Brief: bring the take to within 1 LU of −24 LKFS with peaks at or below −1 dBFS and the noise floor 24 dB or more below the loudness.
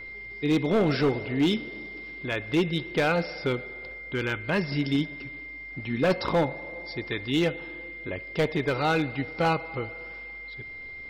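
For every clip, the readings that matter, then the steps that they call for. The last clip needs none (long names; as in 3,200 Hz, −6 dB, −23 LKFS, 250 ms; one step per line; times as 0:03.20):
share of clipped samples 1.1%; peaks flattened at −17.5 dBFS; interfering tone 2,100 Hz; level of the tone −38 dBFS; integrated loudness −28.0 LKFS; sample peak −17.5 dBFS; target loudness −24.0 LKFS
→ clipped peaks rebuilt −17.5 dBFS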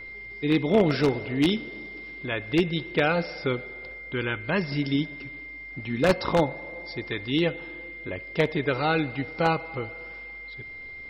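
share of clipped samples 0.0%; interfering tone 2,100 Hz; level of the tone −38 dBFS
→ notch filter 2,100 Hz, Q 30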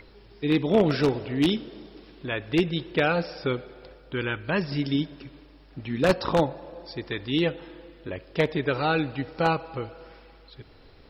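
interfering tone none found; integrated loudness −26.5 LKFS; sample peak −8.0 dBFS; target loudness −24.0 LKFS
→ level +2.5 dB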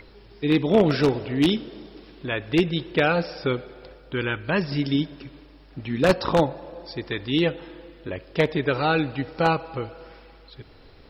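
integrated loudness −24.0 LKFS; sample peak −5.5 dBFS; background noise floor −50 dBFS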